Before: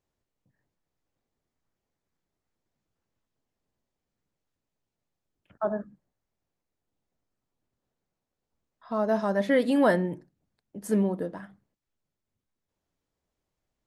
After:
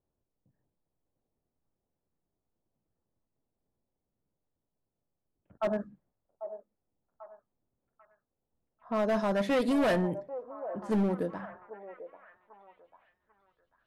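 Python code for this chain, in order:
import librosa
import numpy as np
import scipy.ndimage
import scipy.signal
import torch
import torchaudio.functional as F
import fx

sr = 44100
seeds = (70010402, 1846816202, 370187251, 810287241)

y = np.clip(10.0 ** (23.5 / 20.0) * x, -1.0, 1.0) / 10.0 ** (23.5 / 20.0)
y = fx.echo_stepped(y, sr, ms=793, hz=640.0, octaves=0.7, feedback_pct=70, wet_db=-9.0)
y = fx.env_lowpass(y, sr, base_hz=840.0, full_db=-27.0)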